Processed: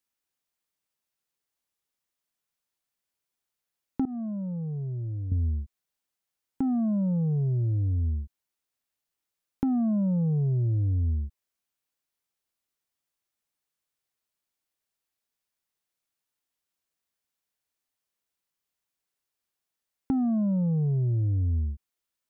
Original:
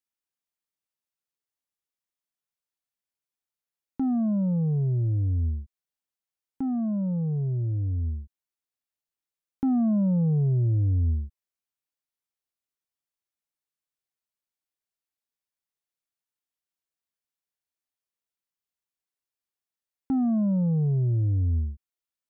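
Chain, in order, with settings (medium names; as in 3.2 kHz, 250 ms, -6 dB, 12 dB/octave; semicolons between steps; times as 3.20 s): 4.05–5.32 s: expander -16 dBFS; compression, threshold -30 dBFS, peak gain reduction 8 dB; trim +5.5 dB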